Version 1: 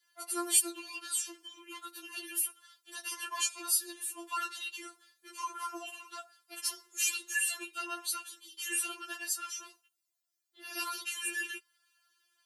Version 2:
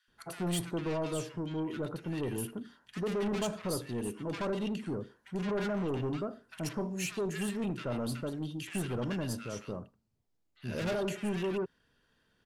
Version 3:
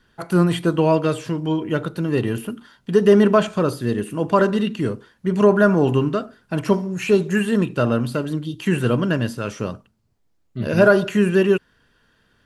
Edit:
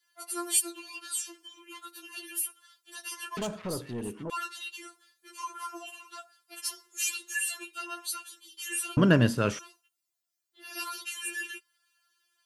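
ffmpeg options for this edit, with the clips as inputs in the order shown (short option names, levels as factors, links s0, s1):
-filter_complex "[0:a]asplit=3[s0][s1][s2];[s0]atrim=end=3.372[s3];[1:a]atrim=start=3.368:end=4.302[s4];[s1]atrim=start=4.298:end=8.972[s5];[2:a]atrim=start=8.968:end=9.592[s6];[s2]atrim=start=9.588[s7];[s3][s4]acrossfade=d=0.004:c1=hsin:c2=hsin[s8];[s8][s5]acrossfade=d=0.004:c1=hsin:c2=hsin[s9];[s9][s6]acrossfade=d=0.004:c1=hsin:c2=hsin[s10];[s10][s7]acrossfade=d=0.004:c1=hsin:c2=hsin"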